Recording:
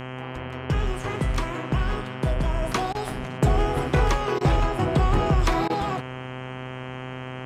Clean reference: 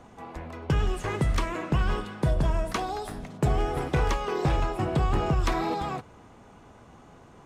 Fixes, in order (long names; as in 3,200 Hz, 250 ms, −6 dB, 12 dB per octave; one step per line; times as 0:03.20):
hum removal 128.3 Hz, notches 25
repair the gap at 0:02.93/0:04.39/0:05.68, 17 ms
level correction −4 dB, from 0:02.62